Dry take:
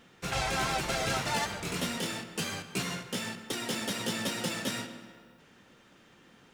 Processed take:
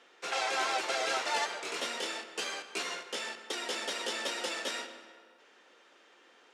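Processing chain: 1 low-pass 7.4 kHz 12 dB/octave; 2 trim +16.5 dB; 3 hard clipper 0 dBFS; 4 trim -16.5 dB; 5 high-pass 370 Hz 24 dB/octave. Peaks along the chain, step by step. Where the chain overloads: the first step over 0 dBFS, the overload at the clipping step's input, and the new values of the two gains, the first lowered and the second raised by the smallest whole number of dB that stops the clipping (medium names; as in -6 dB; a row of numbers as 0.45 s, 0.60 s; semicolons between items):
-20.5 dBFS, -4.0 dBFS, -4.0 dBFS, -20.5 dBFS, -18.5 dBFS; nothing clips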